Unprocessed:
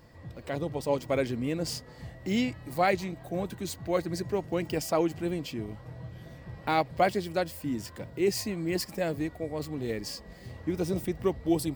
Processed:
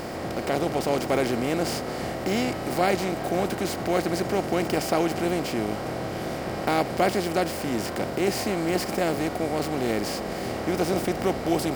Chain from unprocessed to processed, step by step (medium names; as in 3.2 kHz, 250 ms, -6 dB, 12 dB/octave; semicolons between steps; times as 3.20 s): spectral levelling over time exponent 0.4; trim -2 dB